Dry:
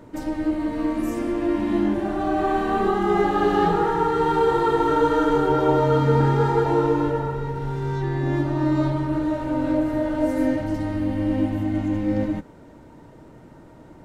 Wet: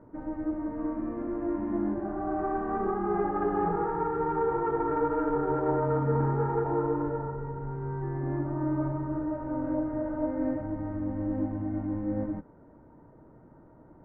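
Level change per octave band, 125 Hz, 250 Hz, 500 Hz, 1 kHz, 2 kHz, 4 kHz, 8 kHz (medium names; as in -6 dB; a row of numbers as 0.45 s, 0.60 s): -8.0 dB, -8.0 dB, -8.0 dB, -8.5 dB, -12.5 dB, under -30 dB, no reading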